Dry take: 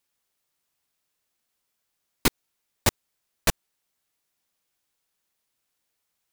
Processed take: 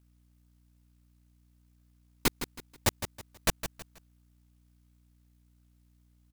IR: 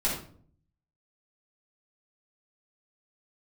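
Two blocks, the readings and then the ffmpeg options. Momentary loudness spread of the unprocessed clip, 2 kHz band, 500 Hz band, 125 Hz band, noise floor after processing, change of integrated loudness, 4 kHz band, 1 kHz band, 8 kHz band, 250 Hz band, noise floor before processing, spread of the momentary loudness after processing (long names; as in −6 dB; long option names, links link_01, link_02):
0 LU, −4.5 dB, −4.5 dB, −4.5 dB, −65 dBFS, −6.0 dB, −4.5 dB, −4.5 dB, −4.5 dB, −4.5 dB, −79 dBFS, 11 LU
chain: -af "aecho=1:1:161|322|483:0.316|0.098|0.0304,aeval=exprs='val(0)+0.00126*(sin(2*PI*60*n/s)+sin(2*PI*2*60*n/s)/2+sin(2*PI*3*60*n/s)/3+sin(2*PI*4*60*n/s)/4+sin(2*PI*5*60*n/s)/5)':channel_layout=same,acrusher=bits=4:mode=log:mix=0:aa=0.000001,volume=-5dB"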